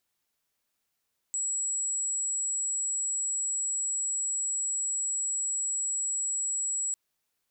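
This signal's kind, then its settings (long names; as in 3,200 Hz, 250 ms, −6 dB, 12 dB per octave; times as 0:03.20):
tone sine 7,760 Hz −27.5 dBFS 5.60 s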